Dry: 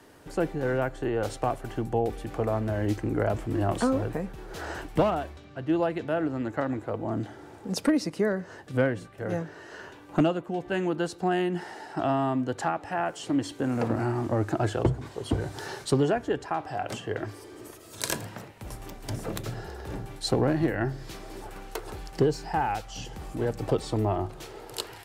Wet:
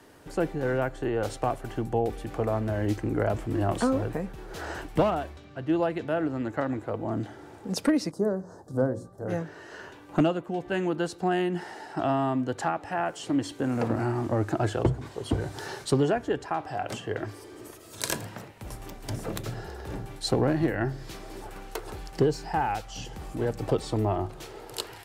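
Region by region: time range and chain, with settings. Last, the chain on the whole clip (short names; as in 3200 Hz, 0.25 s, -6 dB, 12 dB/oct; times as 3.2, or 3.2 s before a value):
8.11–9.28 Butterworth band-stop 2500 Hz, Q 0.55 + high shelf 12000 Hz -5 dB + notches 60/120/180/240/300/360/420/480/540 Hz
whole clip: dry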